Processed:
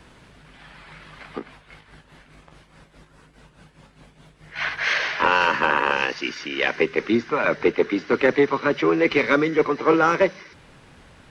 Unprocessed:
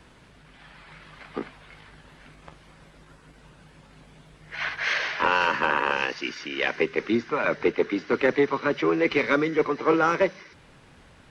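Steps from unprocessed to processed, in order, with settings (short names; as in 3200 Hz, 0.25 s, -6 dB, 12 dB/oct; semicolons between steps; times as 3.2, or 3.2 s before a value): 1.33–4.56 tremolo 4.8 Hz, depth 65%; gain +3.5 dB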